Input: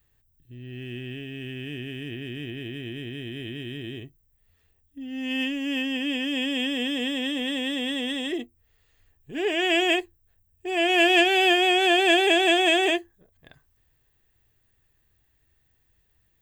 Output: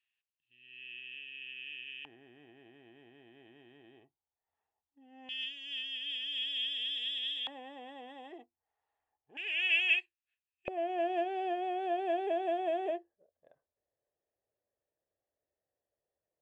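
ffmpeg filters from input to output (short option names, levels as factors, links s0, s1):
-af "asetnsamples=n=441:p=0,asendcmd='2.05 bandpass f 840;5.29 bandpass f 3500;7.47 bandpass f 830;9.37 bandpass f 2600;10.68 bandpass f 570',bandpass=f=2700:t=q:w=5.9:csg=0"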